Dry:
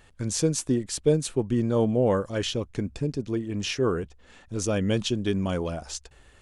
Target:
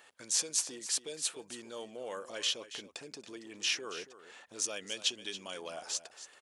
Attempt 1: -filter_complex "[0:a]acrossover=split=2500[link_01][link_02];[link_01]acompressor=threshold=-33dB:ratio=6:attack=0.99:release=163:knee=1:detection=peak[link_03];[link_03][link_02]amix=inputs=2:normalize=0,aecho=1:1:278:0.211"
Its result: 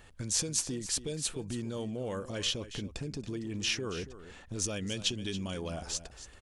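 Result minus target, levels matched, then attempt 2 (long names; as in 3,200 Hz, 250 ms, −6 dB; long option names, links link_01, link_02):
500 Hz band +4.0 dB
-filter_complex "[0:a]acrossover=split=2500[link_01][link_02];[link_01]acompressor=threshold=-33dB:ratio=6:attack=0.99:release=163:knee=1:detection=peak,highpass=540[link_03];[link_03][link_02]amix=inputs=2:normalize=0,aecho=1:1:278:0.211"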